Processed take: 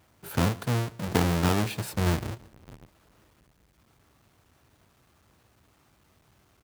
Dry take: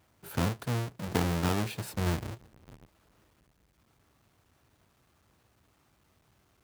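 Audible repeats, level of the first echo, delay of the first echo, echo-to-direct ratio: 1, -22.5 dB, 141 ms, -22.5 dB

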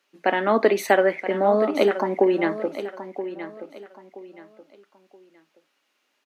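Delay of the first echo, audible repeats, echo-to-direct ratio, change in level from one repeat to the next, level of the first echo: 975 ms, 3, -11.5 dB, -11.0 dB, -12.0 dB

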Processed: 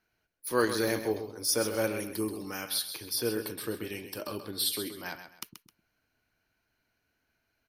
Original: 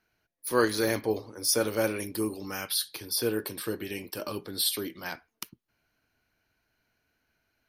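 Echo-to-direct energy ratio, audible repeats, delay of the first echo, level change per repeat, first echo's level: -9.5 dB, 2, 131 ms, -10.5 dB, -10.0 dB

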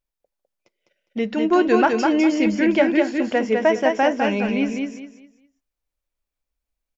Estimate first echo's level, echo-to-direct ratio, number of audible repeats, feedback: -4.0 dB, -3.5 dB, 3, 28%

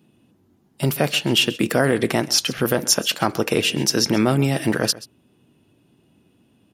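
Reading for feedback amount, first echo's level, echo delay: no regular repeats, -18.5 dB, 132 ms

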